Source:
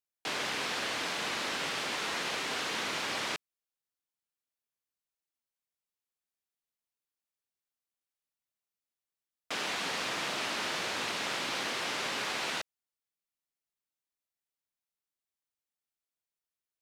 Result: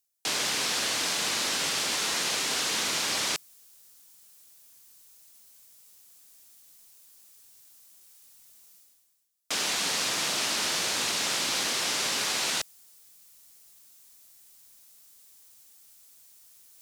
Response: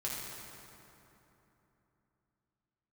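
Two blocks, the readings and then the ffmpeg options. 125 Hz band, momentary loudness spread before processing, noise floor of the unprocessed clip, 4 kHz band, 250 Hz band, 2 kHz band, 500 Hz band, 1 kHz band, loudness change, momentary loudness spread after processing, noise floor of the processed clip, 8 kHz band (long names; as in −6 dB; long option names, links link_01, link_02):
+3.0 dB, 3 LU, below −85 dBFS, +7.5 dB, +2.5 dB, +2.5 dB, +1.5 dB, +1.5 dB, +6.5 dB, 3 LU, −61 dBFS, +13.0 dB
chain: -af "bass=frequency=250:gain=2,treble=frequency=4000:gain=13,areverse,acompressor=mode=upward:threshold=-37dB:ratio=2.5,areverse,volume=1.5dB"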